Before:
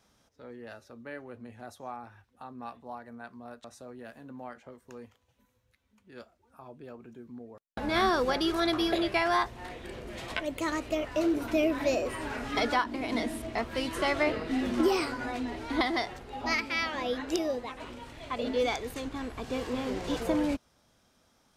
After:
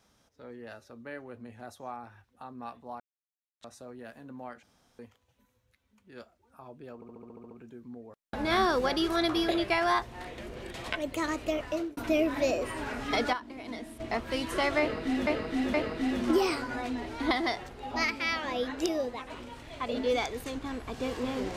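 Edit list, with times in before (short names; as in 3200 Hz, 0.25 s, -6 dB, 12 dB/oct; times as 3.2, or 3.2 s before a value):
3–3.61 mute
4.63–4.99 room tone
6.95 stutter 0.07 s, 9 plays
9.82–10.18 reverse
11.09–11.41 fade out linear
12.77–13.44 gain -9 dB
14.24–14.71 loop, 3 plays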